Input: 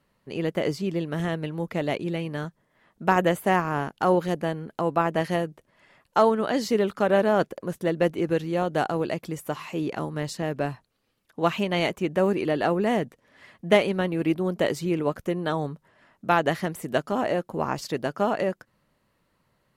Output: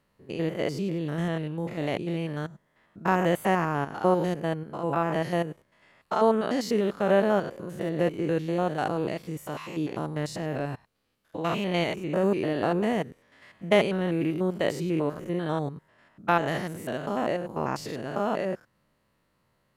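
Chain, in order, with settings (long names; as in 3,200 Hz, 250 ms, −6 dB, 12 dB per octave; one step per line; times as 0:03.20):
spectrum averaged block by block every 100 ms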